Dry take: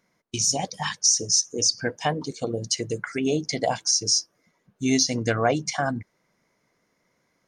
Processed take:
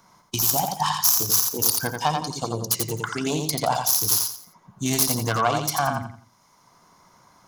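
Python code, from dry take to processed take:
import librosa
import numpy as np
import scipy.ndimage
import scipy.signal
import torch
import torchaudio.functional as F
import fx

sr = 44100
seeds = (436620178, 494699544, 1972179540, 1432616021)

y = fx.self_delay(x, sr, depth_ms=0.14)
y = fx.graphic_eq_10(y, sr, hz=(250, 500, 1000, 2000), db=(-5, -10, 12, -12))
y = fx.echo_feedback(y, sr, ms=86, feedback_pct=27, wet_db=-5)
y = fx.band_squash(y, sr, depth_pct=40)
y = y * librosa.db_to_amplitude(3.0)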